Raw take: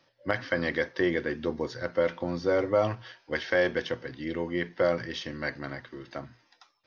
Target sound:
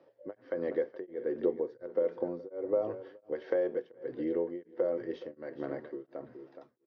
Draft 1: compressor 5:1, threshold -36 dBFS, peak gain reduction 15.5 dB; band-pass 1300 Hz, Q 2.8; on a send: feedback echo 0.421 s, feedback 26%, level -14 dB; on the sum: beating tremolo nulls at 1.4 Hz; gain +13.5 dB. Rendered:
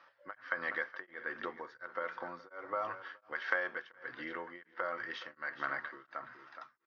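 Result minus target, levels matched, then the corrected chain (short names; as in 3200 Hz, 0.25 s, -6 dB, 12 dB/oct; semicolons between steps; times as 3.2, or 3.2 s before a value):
1000 Hz band +14.0 dB
compressor 5:1, threshold -36 dBFS, peak gain reduction 15.5 dB; band-pass 440 Hz, Q 2.8; on a send: feedback echo 0.421 s, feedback 26%, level -14 dB; on the sum: beating tremolo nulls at 1.4 Hz; gain +13.5 dB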